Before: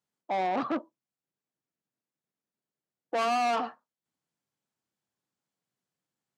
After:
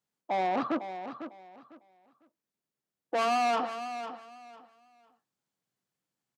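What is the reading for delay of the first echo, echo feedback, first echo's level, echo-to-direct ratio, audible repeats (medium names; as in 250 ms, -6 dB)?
501 ms, 23%, -10.5 dB, -10.5 dB, 2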